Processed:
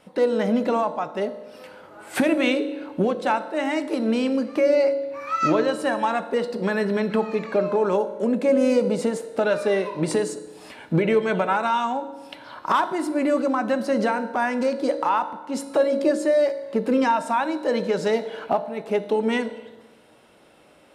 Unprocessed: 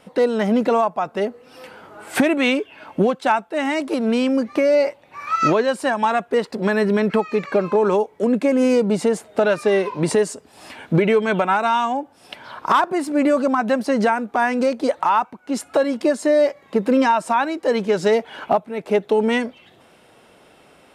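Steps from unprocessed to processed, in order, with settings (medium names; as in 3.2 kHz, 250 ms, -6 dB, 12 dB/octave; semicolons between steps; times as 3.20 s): on a send: graphic EQ with 31 bands 315 Hz +11 dB, 500 Hz +9 dB, 1.25 kHz +4 dB, 4 kHz +11 dB, 10 kHz +6 dB + reverberation RT60 1.2 s, pre-delay 3 ms, DRR 9.5 dB; on the sum: trim -4.5 dB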